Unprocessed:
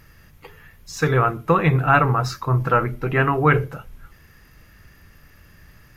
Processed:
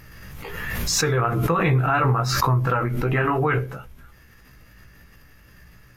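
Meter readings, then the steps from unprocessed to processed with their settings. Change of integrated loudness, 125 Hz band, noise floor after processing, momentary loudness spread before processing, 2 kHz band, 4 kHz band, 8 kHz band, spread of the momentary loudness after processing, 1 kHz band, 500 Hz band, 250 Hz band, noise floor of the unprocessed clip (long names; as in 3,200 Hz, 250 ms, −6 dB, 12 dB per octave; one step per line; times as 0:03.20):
−2.0 dB, −1.0 dB, −51 dBFS, 6 LU, −3.0 dB, +7.5 dB, +11.5 dB, 14 LU, −3.0 dB, −2.5 dB, −2.0 dB, −51 dBFS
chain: chorus effect 2.9 Hz, delay 15.5 ms, depth 2.1 ms
brickwall limiter −13 dBFS, peak gain reduction 6.5 dB
background raised ahead of every attack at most 26 dB per second
level +1 dB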